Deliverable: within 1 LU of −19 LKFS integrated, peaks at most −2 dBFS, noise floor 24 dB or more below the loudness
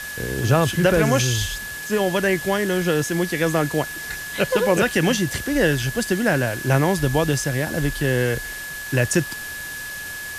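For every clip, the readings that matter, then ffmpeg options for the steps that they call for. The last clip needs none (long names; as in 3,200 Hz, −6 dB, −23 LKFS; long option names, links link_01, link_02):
interfering tone 1,700 Hz; level of the tone −31 dBFS; background noise floor −32 dBFS; target noise floor −46 dBFS; integrated loudness −21.5 LKFS; sample peak −5.0 dBFS; target loudness −19.0 LKFS
→ -af "bandreject=frequency=1700:width=30"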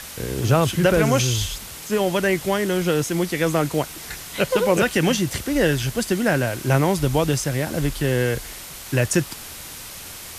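interfering tone none found; background noise floor −37 dBFS; target noise floor −46 dBFS
→ -af "afftdn=noise_reduction=9:noise_floor=-37"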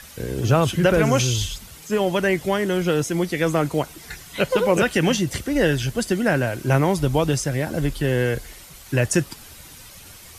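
background noise floor −43 dBFS; target noise floor −46 dBFS
→ -af "afftdn=noise_reduction=6:noise_floor=-43"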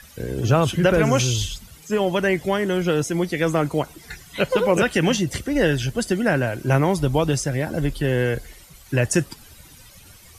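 background noise floor −47 dBFS; integrated loudness −21.5 LKFS; sample peak −5.5 dBFS; target loudness −19.0 LKFS
→ -af "volume=2.5dB"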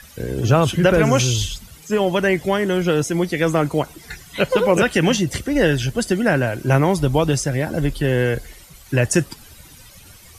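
integrated loudness −19.0 LKFS; sample peak −3.0 dBFS; background noise floor −45 dBFS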